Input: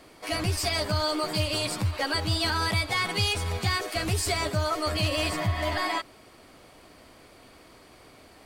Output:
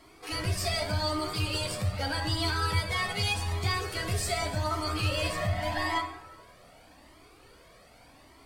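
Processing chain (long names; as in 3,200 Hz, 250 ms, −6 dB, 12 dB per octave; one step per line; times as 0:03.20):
dense smooth reverb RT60 1.3 s, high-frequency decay 0.5×, DRR 3.5 dB
flanger whose copies keep moving one way rising 0.84 Hz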